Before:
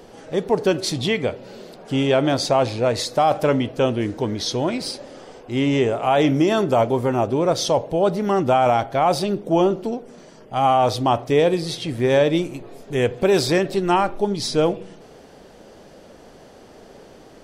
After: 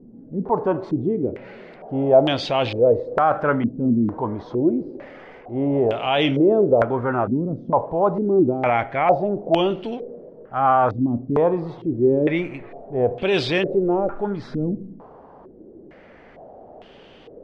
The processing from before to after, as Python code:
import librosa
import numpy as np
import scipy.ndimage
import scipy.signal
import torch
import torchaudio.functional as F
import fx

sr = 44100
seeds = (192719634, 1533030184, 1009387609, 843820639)

y = fx.transient(x, sr, attack_db=-3, sustain_db=2)
y = fx.filter_held_lowpass(y, sr, hz=2.2, low_hz=240.0, high_hz=3000.0)
y = y * 10.0 ** (-3.0 / 20.0)